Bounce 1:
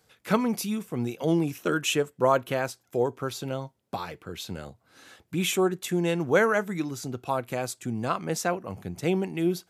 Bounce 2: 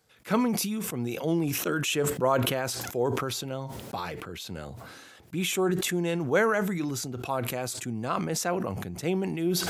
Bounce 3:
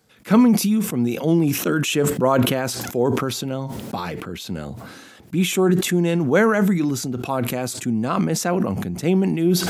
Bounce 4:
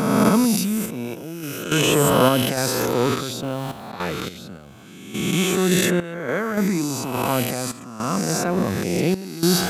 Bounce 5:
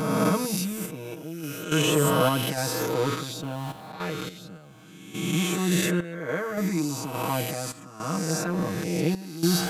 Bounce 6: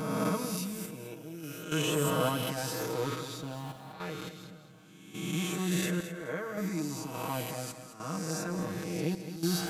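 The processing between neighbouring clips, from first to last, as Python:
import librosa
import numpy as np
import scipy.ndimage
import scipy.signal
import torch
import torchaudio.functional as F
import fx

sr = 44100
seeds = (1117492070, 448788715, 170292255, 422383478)

y1 = fx.sustainer(x, sr, db_per_s=27.0)
y1 = y1 * 10.0 ** (-3.0 / 20.0)
y2 = fx.peak_eq(y1, sr, hz=220.0, db=8.0, octaves=1.1)
y2 = y2 * 10.0 ** (5.0 / 20.0)
y3 = fx.spec_swells(y2, sr, rise_s=1.92)
y3 = fx.tremolo_random(y3, sr, seeds[0], hz=3.5, depth_pct=85)
y3 = y3 * 10.0 ** (-1.0 / 20.0)
y4 = y3 + 0.88 * np.pad(y3, (int(6.4 * sr / 1000.0), 0))[:len(y3)]
y4 = y4 * 10.0 ** (-8.0 / 20.0)
y5 = fx.echo_feedback(y4, sr, ms=214, feedback_pct=28, wet_db=-11)
y5 = y5 * 10.0 ** (-7.5 / 20.0)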